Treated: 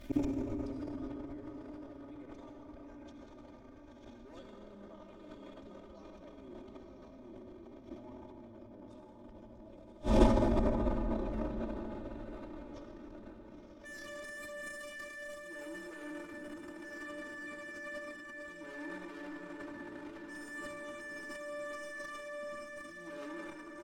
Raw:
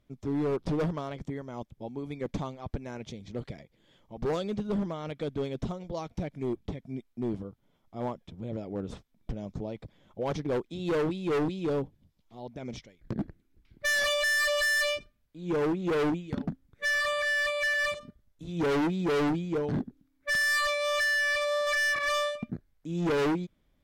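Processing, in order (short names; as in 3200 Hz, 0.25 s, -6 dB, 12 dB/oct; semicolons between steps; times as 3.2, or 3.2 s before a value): diffused feedback echo 0.971 s, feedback 46%, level -3.5 dB; flipped gate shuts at -32 dBFS, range -41 dB; reverb RT60 5.9 s, pre-delay 52 ms, DRR -1 dB; transient shaper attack -6 dB, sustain +12 dB; comb 3.3 ms, depth 93%; gain +15.5 dB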